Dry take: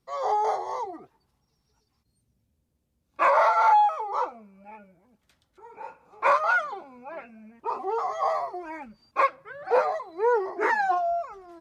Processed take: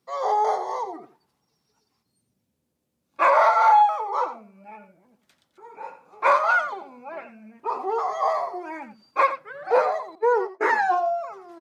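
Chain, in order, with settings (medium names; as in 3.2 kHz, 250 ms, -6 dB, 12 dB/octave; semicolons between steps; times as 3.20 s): 10.15–10.61 s: gate -27 dBFS, range -34 dB; high-pass 170 Hz 12 dB/octave; delay 88 ms -12 dB; trim +2.5 dB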